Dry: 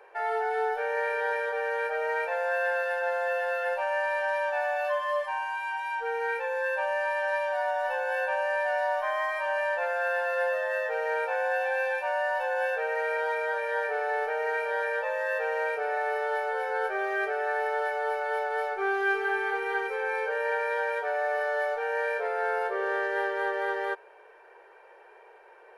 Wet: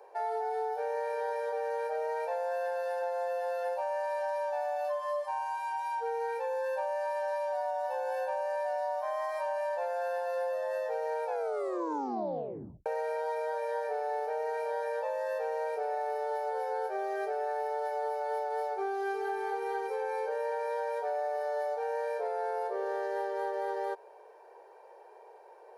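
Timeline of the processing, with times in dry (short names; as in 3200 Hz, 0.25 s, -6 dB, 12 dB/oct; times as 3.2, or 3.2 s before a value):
11.25 tape stop 1.61 s
whole clip: HPF 360 Hz 12 dB/oct; band shelf 2000 Hz -13 dB; compressor, threshold -32 dBFS; gain +2 dB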